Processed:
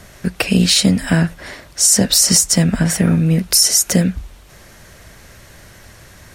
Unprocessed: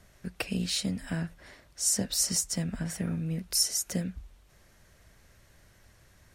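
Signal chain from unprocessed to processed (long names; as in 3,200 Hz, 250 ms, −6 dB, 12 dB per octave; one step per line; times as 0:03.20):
low-shelf EQ 80 Hz −5.5 dB
boost into a limiter +20 dB
level −1 dB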